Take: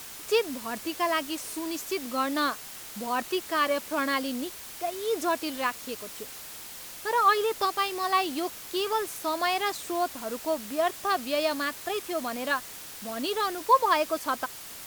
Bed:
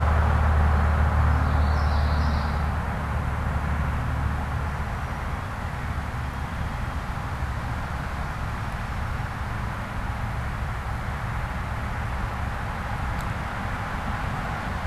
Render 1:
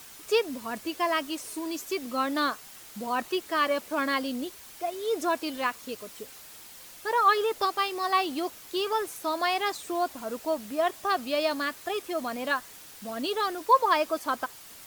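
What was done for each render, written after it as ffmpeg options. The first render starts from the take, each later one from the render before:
-af "afftdn=nr=6:nf=-43"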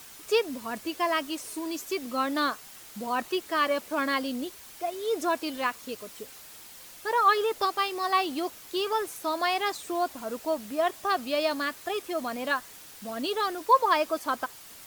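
-af anull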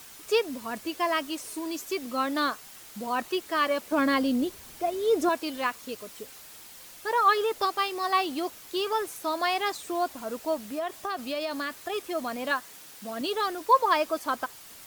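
-filter_complex "[0:a]asettb=1/sr,asplit=3[a][b][c];[a]atrim=end=3.924[d];[b]atrim=start=3.92:end=5.29,asetpts=PTS-STARTPTS,afade=t=in:d=0.004:c=qsin,afade=t=out:st=1.366:d=0.004:c=qsin,lowshelf=f=470:g=9.5[e];[c]atrim=start=5.286[f];[d][e]acrossfade=d=0.004:c1=hsin:c2=qsin[g];[g][f]acrossfade=d=0.004:c1=qsin:c2=hsin,asettb=1/sr,asplit=3[h][i][j];[h]atrim=end=10.634[k];[i]atrim=start=10.63:end=11.93,asetpts=PTS-STARTPTS,afade=t=in:d=0.004:c=qsin,afade=t=out:st=1.296:d=0.004:c=qsin,acompressor=threshold=-27dB:ratio=6:attack=3.2:release=140:knee=1:detection=peak[l];[j]atrim=start=11.926[m];[k][l]acrossfade=d=0.004:c1=hsin:c2=qsin[n];[n][m]acrossfade=d=0.004:c1=qsin:c2=hsin,asettb=1/sr,asplit=3[o][p][q];[o]atrim=end=12.514[r];[p]atrim=start=12.51:end=13.21,asetpts=PTS-STARTPTS,afade=t=in:d=0.004:c=qsin,afade=t=out:st=0.696:d=0.004:c=qsin,highpass=120[s];[q]atrim=start=13.206[t];[r][s]acrossfade=d=0.004:c1=hsin:c2=qsin[u];[u][t]acrossfade=d=0.004:c1=qsin:c2=hsin"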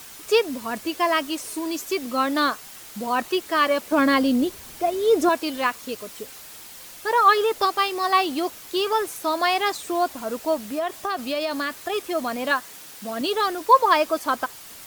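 -af "volume=5.5dB"

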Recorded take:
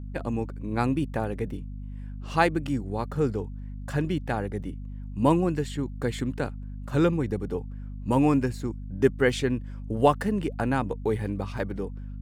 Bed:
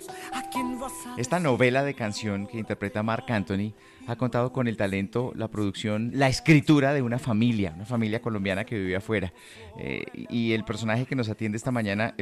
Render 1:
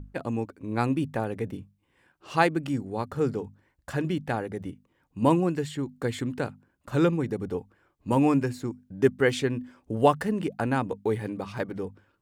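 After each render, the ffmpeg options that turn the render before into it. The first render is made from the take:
-af "bandreject=f=50:t=h:w=6,bandreject=f=100:t=h:w=6,bandreject=f=150:t=h:w=6,bandreject=f=200:t=h:w=6,bandreject=f=250:t=h:w=6"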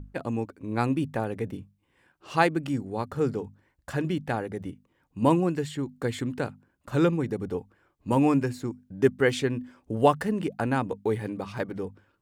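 -af anull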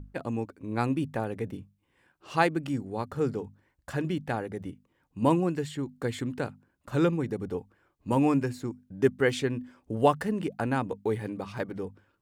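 -af "volume=-2dB"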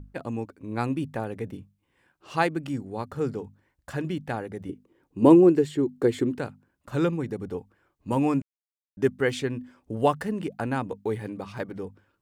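-filter_complex "[0:a]asettb=1/sr,asplit=3[a][b][c];[a]atrim=end=4.694[d];[b]atrim=start=4.69:end=6.35,asetpts=PTS-STARTPTS,afade=t=in:d=0.004:c=qsin,afade=t=out:st=1.656:d=0.004:c=qsin,equalizer=f=370:w=1.5:g=14.5[e];[c]atrim=start=6.346[f];[d][e]acrossfade=d=0.004:c1=hsin:c2=qsin[g];[g][f]acrossfade=d=0.004:c1=qsin:c2=hsin,asplit=3[h][i][j];[h]atrim=end=8.42,asetpts=PTS-STARTPTS,afade=t=out:st=8.416:d=0.004:c=hsin[k];[i]atrim=start=8.42:end=8.97,asetpts=PTS-STARTPTS,volume=0[l];[j]atrim=start=8.97,asetpts=PTS-STARTPTS,afade=t=in:d=0.004:c=hsin[m];[k][l][m]concat=n=3:v=0:a=1"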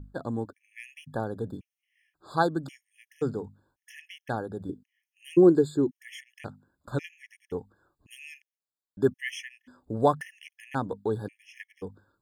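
-af "afftfilt=real='re*gt(sin(2*PI*0.93*pts/sr)*(1-2*mod(floor(b*sr/1024/1700),2)),0)':imag='im*gt(sin(2*PI*0.93*pts/sr)*(1-2*mod(floor(b*sr/1024/1700),2)),0)':win_size=1024:overlap=0.75"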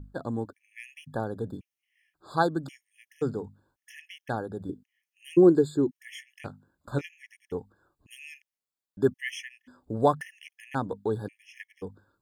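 -filter_complex "[0:a]asettb=1/sr,asplit=3[a][b][c];[a]atrim=end=6.024[d];[b]atrim=start=6.02:end=7.05,asetpts=PTS-STARTPTS,afade=t=in:d=0.004:c=qsin,afade=t=out:st=1.026:d=0.004:c=qsin,asplit=2[e][f];[f]adelay=21,volume=-11dB[g];[e][g]amix=inputs=2:normalize=0,atrim=end_sample=45423[h];[c]atrim=start=7.046[i];[d][h]acrossfade=d=0.004:c1=hsin:c2=qsin[j];[j][i]acrossfade=d=0.004:c1=qsin:c2=hsin"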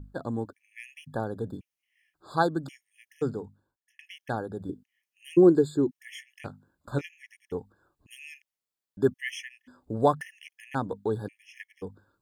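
-filter_complex "[0:a]asplit=2[a][b];[a]atrim=end=3.99,asetpts=PTS-STARTPTS,afade=t=out:st=3.25:d=0.74[c];[b]atrim=start=3.99,asetpts=PTS-STARTPTS,afade=t=in:d=0.004:c=hsin[d];[c][d]concat=n=2:v=0:a=1"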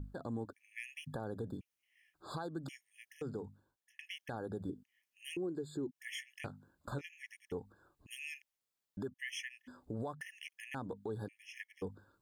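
-af "acompressor=threshold=-29dB:ratio=5,alimiter=level_in=7.5dB:limit=-24dB:level=0:latency=1:release=182,volume=-7.5dB"

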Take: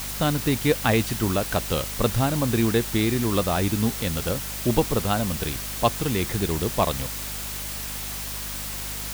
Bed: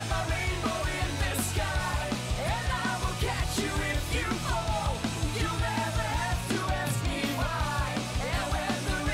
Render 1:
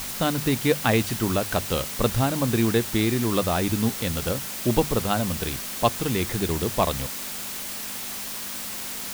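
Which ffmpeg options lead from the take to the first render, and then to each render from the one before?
-af "bandreject=f=50:t=h:w=6,bandreject=f=100:t=h:w=6,bandreject=f=150:t=h:w=6"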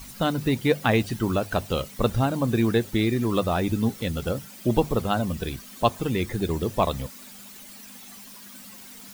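-af "afftdn=nr=14:nf=-33"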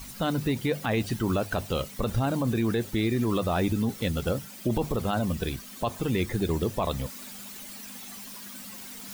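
-af "areverse,acompressor=mode=upward:threshold=-36dB:ratio=2.5,areverse,alimiter=limit=-17dB:level=0:latency=1:release=30"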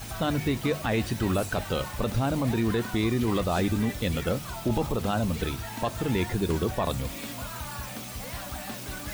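-filter_complex "[1:a]volume=-8.5dB[a];[0:a][a]amix=inputs=2:normalize=0"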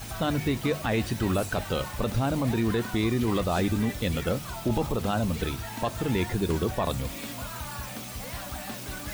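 -af anull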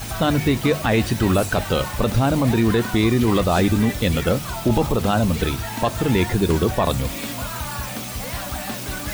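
-af "volume=8dB"

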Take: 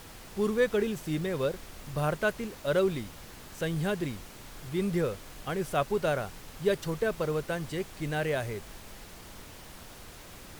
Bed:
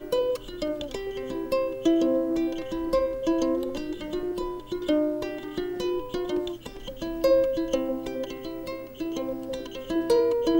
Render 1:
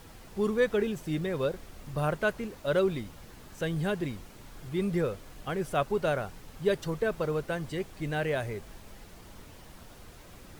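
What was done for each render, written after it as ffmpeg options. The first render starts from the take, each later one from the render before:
-af "afftdn=nr=6:nf=-48"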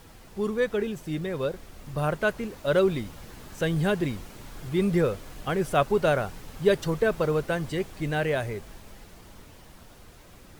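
-af "dynaudnorm=f=280:g=17:m=5.5dB"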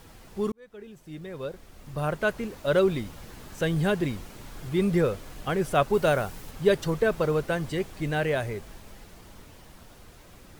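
-filter_complex "[0:a]asettb=1/sr,asplit=3[a][b][c];[a]atrim=end=5.934[d];[b]atrim=start=5.93:end=6.51,asetpts=PTS-STARTPTS,afade=t=in:d=0.004:c=qsin,afade=t=out:st=0.576:d=0.004:c=qsin,highshelf=f=8.4k:g=7.5[e];[c]atrim=start=6.506[f];[d][e]acrossfade=d=0.004:c1=hsin:c2=qsin[g];[g][f]acrossfade=d=0.004:c1=qsin:c2=hsin,asplit=2[h][i];[h]atrim=end=0.52,asetpts=PTS-STARTPTS,afade=t=out:st=0.516:d=0.004:c=hsin[j];[i]atrim=start=0.52,asetpts=PTS-STARTPTS,afade=t=in:d=1.87[k];[j][k]concat=n=2:v=0:a=1"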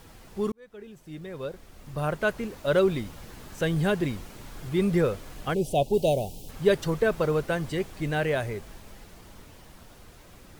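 -filter_complex "[0:a]asplit=3[a][b][c];[a]afade=t=out:st=5.53:d=0.02[d];[b]asuperstop=centerf=1500:order=8:qfactor=0.76,afade=t=in:st=5.53:d=0.02,afade=t=out:st=6.48:d=0.02[e];[c]afade=t=in:st=6.48:d=0.02[f];[d][e][f]amix=inputs=3:normalize=0"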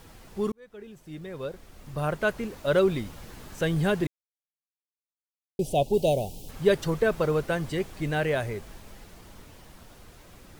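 -filter_complex "[0:a]asplit=3[a][b][c];[a]atrim=end=4.07,asetpts=PTS-STARTPTS,afade=t=out:st=4.066:d=0.004:c=hsin[d];[b]atrim=start=4.07:end=5.59,asetpts=PTS-STARTPTS,volume=0[e];[c]atrim=start=5.59,asetpts=PTS-STARTPTS,afade=t=in:d=0.004:c=hsin[f];[d][e][f]concat=n=3:v=0:a=1"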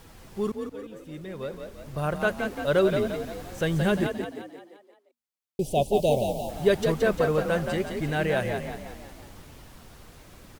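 -filter_complex "[0:a]asplit=7[a][b][c][d][e][f][g];[b]adelay=174,afreqshift=39,volume=-6dB[h];[c]adelay=348,afreqshift=78,volume=-12.4dB[i];[d]adelay=522,afreqshift=117,volume=-18.8dB[j];[e]adelay=696,afreqshift=156,volume=-25.1dB[k];[f]adelay=870,afreqshift=195,volume=-31.5dB[l];[g]adelay=1044,afreqshift=234,volume=-37.9dB[m];[a][h][i][j][k][l][m]amix=inputs=7:normalize=0"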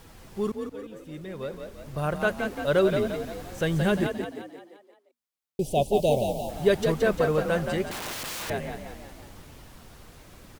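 -filter_complex "[0:a]asettb=1/sr,asplit=3[a][b][c];[a]atrim=end=7.914[d];[b]atrim=start=7.91:end=8.5,asetpts=PTS-STARTPTS,afade=t=in:d=0.004:c=qsin,afade=t=out:st=0.586:d=0.004:c=qsin,aeval=exprs='(mod(31.6*val(0)+1,2)-1)/31.6':c=same[e];[c]atrim=start=8.496[f];[d][e]acrossfade=d=0.004:c1=hsin:c2=qsin[g];[g][f]acrossfade=d=0.004:c1=qsin:c2=hsin"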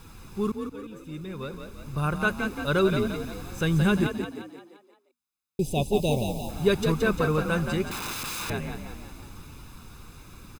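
-af "aecho=1:1:0.8:0.61"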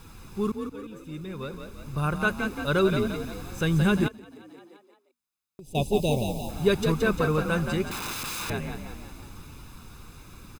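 -filter_complex "[0:a]asettb=1/sr,asplit=3[a][b][c];[a]atrim=end=4.084[d];[b]atrim=start=4.08:end=5.75,asetpts=PTS-STARTPTS,afade=t=in:d=0.004:c=qsin,afade=t=out:st=1.666:d=0.004:c=qsin,acompressor=threshold=-43dB:ratio=6:attack=3.2:release=140:knee=1:detection=peak[e];[c]atrim=start=5.746[f];[d][e]acrossfade=d=0.004:c1=hsin:c2=qsin[g];[g][f]acrossfade=d=0.004:c1=qsin:c2=hsin"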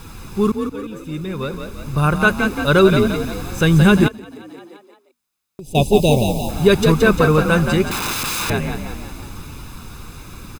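-af "volume=10.5dB,alimiter=limit=-1dB:level=0:latency=1"

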